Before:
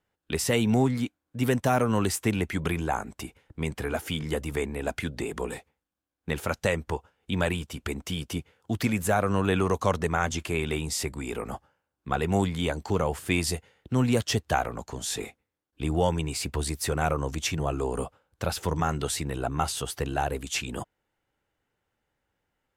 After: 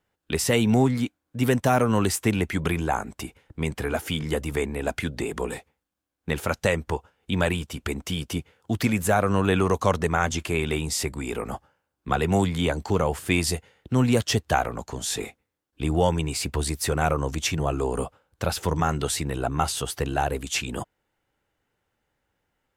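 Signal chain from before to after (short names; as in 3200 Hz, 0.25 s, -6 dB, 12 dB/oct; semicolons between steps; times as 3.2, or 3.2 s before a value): 12.08–12.84 three-band squash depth 40%; gain +3 dB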